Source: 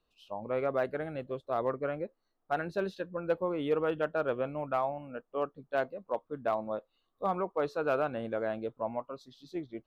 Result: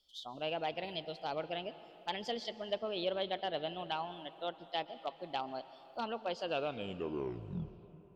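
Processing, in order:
turntable brake at the end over 2.19 s
high shelf with overshoot 1,900 Hz +11.5 dB, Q 3
treble cut that deepens with the level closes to 2,200 Hz, closed at −26.5 dBFS
speed change +21%
on a send: convolution reverb RT60 3.6 s, pre-delay 113 ms, DRR 14 dB
on the sum: level −5.5 dB

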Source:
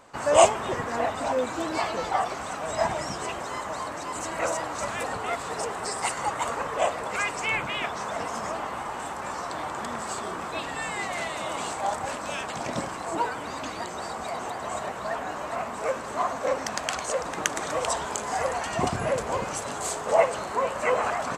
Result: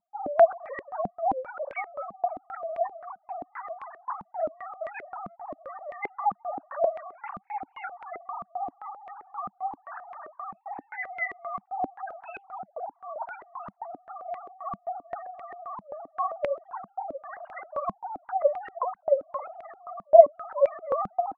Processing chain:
three sine waves on the formant tracks
gate on every frequency bin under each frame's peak −15 dB strong
low-pass on a step sequencer 7.6 Hz 200–2,200 Hz
level −5 dB

